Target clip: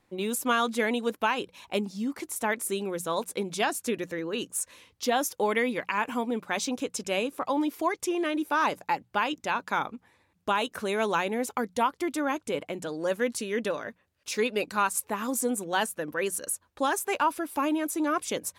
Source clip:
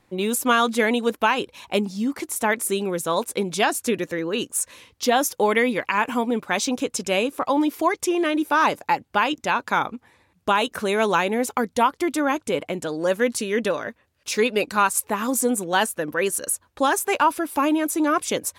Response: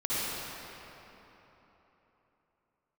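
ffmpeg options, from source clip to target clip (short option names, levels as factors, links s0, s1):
-af "bandreject=f=60:t=h:w=6,bandreject=f=120:t=h:w=6,bandreject=f=180:t=h:w=6,volume=0.473"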